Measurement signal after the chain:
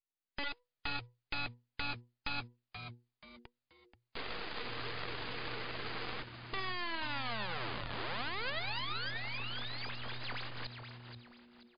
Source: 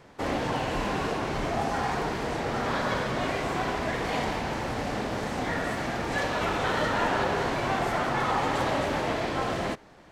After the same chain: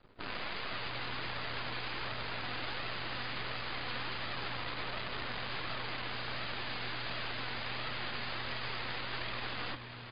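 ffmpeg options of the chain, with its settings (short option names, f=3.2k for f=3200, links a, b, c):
-filter_complex "[0:a]afreqshift=-490,dynaudnorm=f=130:g=5:m=10dB,aeval=exprs='(mod(8.41*val(0)+1,2)-1)/8.41':c=same,flanger=delay=1.5:depth=2.6:regen=56:speed=1.4:shape=sinusoidal,acrossover=split=470|940|2800[a][b][c][d];[a]acompressor=threshold=-47dB:ratio=4[e];[b]acompressor=threshold=-48dB:ratio=4[f];[c]acompressor=threshold=-36dB:ratio=4[g];[d]acompressor=threshold=-37dB:ratio=4[h];[e][f][g][h]amix=inputs=4:normalize=0,aeval=exprs='max(val(0),0)':c=same,asplit=5[i][j][k][l][m];[j]adelay=481,afreqshift=-120,volume=-9dB[n];[k]adelay=962,afreqshift=-240,volume=-18.4dB[o];[l]adelay=1443,afreqshift=-360,volume=-27.7dB[p];[m]adelay=1924,afreqshift=-480,volume=-37.1dB[q];[i][n][o][p][q]amix=inputs=5:normalize=0" -ar 11025 -c:a libmp3lame -b:a 56k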